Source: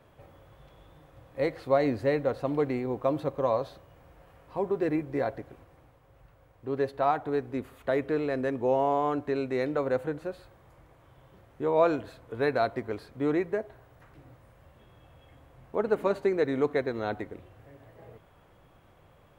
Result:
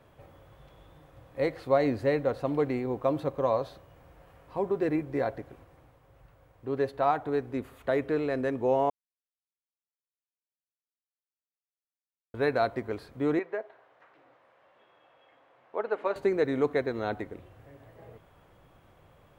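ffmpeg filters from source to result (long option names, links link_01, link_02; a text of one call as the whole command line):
ffmpeg -i in.wav -filter_complex "[0:a]asettb=1/sr,asplit=3[link_01][link_02][link_03];[link_01]atrim=end=13.394[link_04];[link_02]atrim=start=13.39:end=16.16,asetpts=PTS-STARTPTS,afade=type=in:duration=0.004:curve=qsin,afade=type=out:start_time=2.766:duration=0.004:curve=qsin,highpass=510,lowpass=3400[link_05];[link_03]atrim=start=16.156[link_06];[link_04][link_05]acrossfade=duration=0.004:curve1=hsin:curve2=qsin[link_07];[link_07][link_06]acrossfade=duration=0.004:curve1=qsin:curve2=hsin,asplit=3[link_08][link_09][link_10];[link_08]atrim=end=8.9,asetpts=PTS-STARTPTS,afade=type=out:start_time=8.896:duration=0.004:curve=hsin[link_11];[link_09]atrim=start=8.9:end=12.34,asetpts=PTS-STARTPTS,volume=0[link_12];[link_10]atrim=start=12.34,asetpts=PTS-STARTPTS,afade=type=in:duration=0.004:curve=hsin[link_13];[link_11][link_12][link_13]concat=n=3:v=0:a=1" out.wav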